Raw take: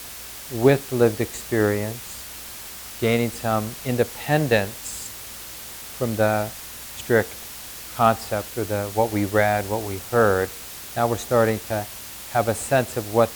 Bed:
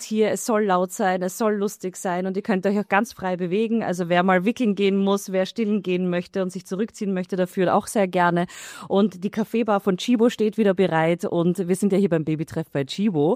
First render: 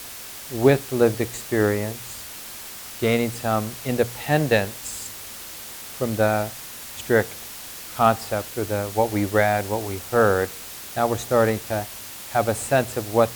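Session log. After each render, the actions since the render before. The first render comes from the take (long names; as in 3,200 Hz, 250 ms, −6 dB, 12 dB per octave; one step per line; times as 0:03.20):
hum removal 60 Hz, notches 3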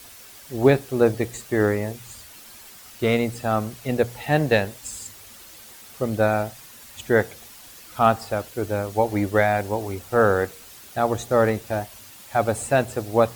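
broadband denoise 9 dB, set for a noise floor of −38 dBFS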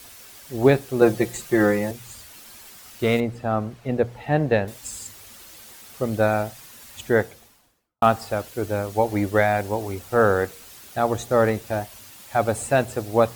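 0:01.01–0:01.91: comb filter 5.7 ms, depth 92%
0:03.20–0:04.68: low-pass filter 1,400 Hz 6 dB per octave
0:07.00–0:08.02: fade out and dull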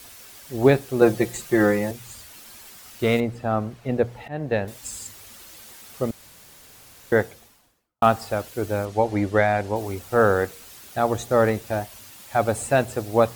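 0:04.28–0:04.90: fade in equal-power, from −17.5 dB
0:06.11–0:07.12: fill with room tone
0:08.85–0:09.76: high-frequency loss of the air 52 metres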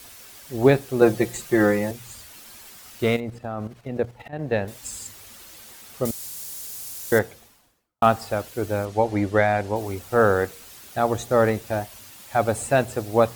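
0:03.09–0:04.39: output level in coarse steps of 10 dB
0:06.05–0:07.19: bass and treble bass 0 dB, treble +15 dB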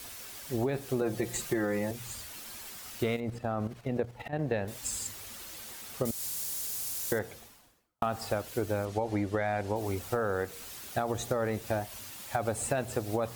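brickwall limiter −13 dBFS, peak gain reduction 9 dB
downward compressor, threshold −27 dBFS, peak gain reduction 9.5 dB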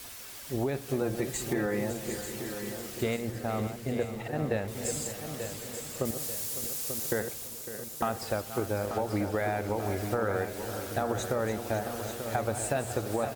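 feedback delay that plays each chunk backwards 277 ms, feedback 70%, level −10.5 dB
repeating echo 888 ms, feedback 47%, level −9 dB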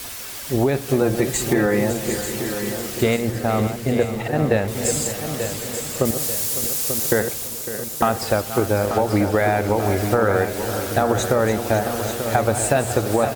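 level +11.5 dB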